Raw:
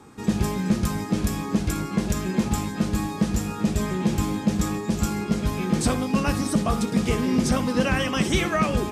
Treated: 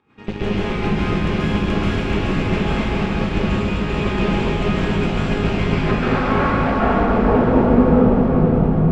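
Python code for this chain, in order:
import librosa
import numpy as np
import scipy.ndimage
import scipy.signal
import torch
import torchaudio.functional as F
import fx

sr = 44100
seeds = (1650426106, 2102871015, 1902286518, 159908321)

p1 = fx.filter_sweep_lowpass(x, sr, from_hz=2700.0, to_hz=160.0, start_s=5.48, end_s=8.11, q=2.6)
p2 = fx.volume_shaper(p1, sr, bpm=83, per_beat=1, depth_db=-13, release_ms=95.0, shape='slow start')
p3 = fx.cheby_harmonics(p2, sr, harmonics=(6,), levels_db=(-11,), full_scale_db=-4.5)
p4 = p3 + fx.echo_diffused(p3, sr, ms=513, feedback_pct=60, wet_db=-6.5, dry=0)
p5 = fx.rev_plate(p4, sr, seeds[0], rt60_s=2.9, hf_ratio=0.9, predelay_ms=120, drr_db=-9.0)
y = p5 * 10.0 ** (-7.0 / 20.0)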